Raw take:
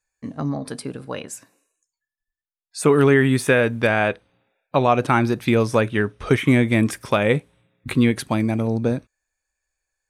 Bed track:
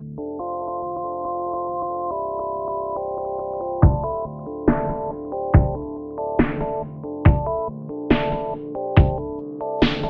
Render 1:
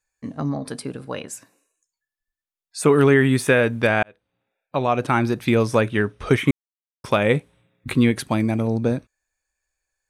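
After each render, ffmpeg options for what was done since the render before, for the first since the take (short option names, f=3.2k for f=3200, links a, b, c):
-filter_complex "[0:a]asplit=4[a][b][c][d];[a]atrim=end=4.03,asetpts=PTS-STARTPTS,afade=t=out:st=4.026:d=0.004:c=hsin[e];[b]atrim=start=4.03:end=6.51,asetpts=PTS-STARTPTS,afade=t=in:d=1.83:c=qsin,afade=t=out:st=2.476:d=0.004:c=hsin[f];[c]atrim=start=6.51:end=7.04,asetpts=PTS-STARTPTS,volume=0[g];[d]atrim=start=7.04,asetpts=PTS-STARTPTS,afade=t=in:d=0.004:c=hsin[h];[e][f][g][h]concat=n=4:v=0:a=1"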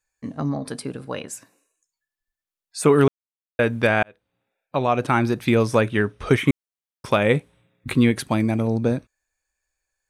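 -filter_complex "[0:a]asplit=3[a][b][c];[a]atrim=end=3.08,asetpts=PTS-STARTPTS,afade=t=out:st=3.076:d=0.004:c=hsin[d];[b]atrim=start=3.08:end=3.59,asetpts=PTS-STARTPTS,volume=0[e];[c]atrim=start=3.59,asetpts=PTS-STARTPTS,afade=t=in:d=0.004:c=hsin[f];[d][e][f]concat=n=3:v=0:a=1"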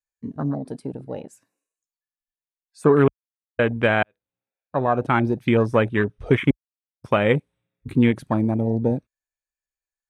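-af "afwtdn=0.0447"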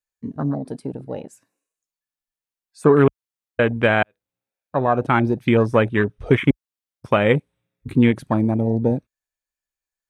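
-af "volume=2dB"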